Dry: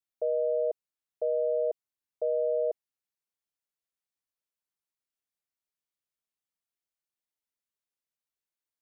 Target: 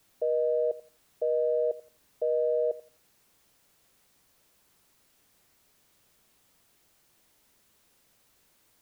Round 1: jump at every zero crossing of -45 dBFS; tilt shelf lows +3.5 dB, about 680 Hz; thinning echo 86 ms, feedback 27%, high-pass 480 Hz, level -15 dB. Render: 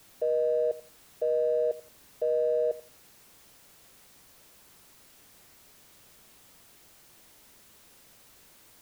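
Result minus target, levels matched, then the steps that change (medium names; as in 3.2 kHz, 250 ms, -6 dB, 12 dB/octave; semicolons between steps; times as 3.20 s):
jump at every zero crossing: distortion +10 dB
change: jump at every zero crossing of -55 dBFS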